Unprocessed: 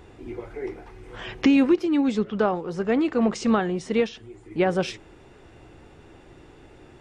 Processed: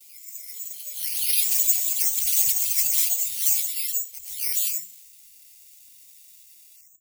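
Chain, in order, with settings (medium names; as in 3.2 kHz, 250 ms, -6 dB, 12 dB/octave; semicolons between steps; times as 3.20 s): delay that grows with frequency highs early, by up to 579 ms; vibrato 2.9 Hz 15 cents; ever faster or slower copies 473 ms, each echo +7 st, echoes 2; tilt EQ +4.5 dB/octave; hum notches 60/120/180/240/300/360/420/480 Hz; careless resampling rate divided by 6×, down none, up zero stuff; gate with hold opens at -33 dBFS; FFT filter 110 Hz 0 dB, 320 Hz -24 dB, 640 Hz -10 dB, 930 Hz -15 dB, 1.4 kHz -28 dB, 2.1 kHz -1 dB, 4.4 kHz +3 dB, 11 kHz +8 dB; trim -11 dB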